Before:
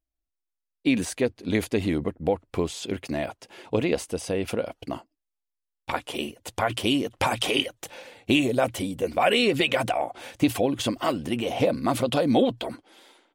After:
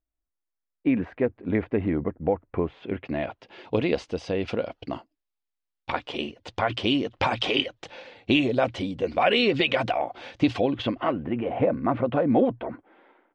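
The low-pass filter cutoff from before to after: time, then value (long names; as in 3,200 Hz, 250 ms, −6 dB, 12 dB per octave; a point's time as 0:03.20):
low-pass filter 24 dB per octave
0:02.67 2,000 Hz
0:03.65 4,800 Hz
0:10.59 4,800 Hz
0:11.21 2,000 Hz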